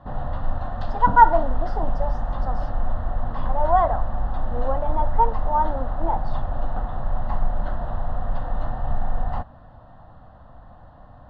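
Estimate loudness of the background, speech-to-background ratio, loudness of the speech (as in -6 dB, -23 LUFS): -30.0 LUFS, 7.0 dB, -23.0 LUFS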